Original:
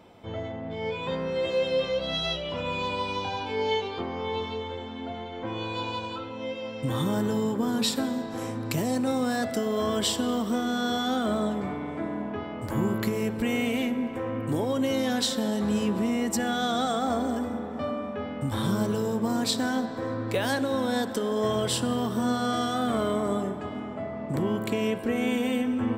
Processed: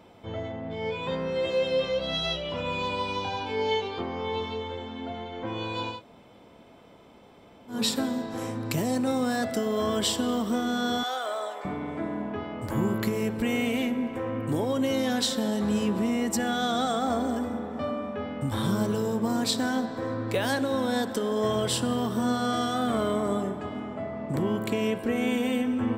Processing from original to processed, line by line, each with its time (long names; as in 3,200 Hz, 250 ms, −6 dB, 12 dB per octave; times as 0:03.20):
0:05.95–0:07.75: fill with room tone, crossfade 0.16 s
0:11.03–0:11.65: high-pass filter 540 Hz 24 dB per octave